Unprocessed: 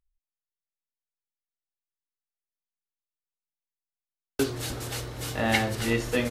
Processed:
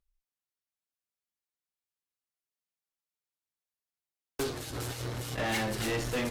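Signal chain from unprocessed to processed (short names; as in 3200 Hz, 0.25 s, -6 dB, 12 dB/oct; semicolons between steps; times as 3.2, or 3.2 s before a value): 4.57–5.38 negative-ratio compressor -36 dBFS, ratio -0.5; flange 0.35 Hz, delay 5 ms, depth 8.9 ms, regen -35%; tube stage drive 34 dB, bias 0.5; gain +6 dB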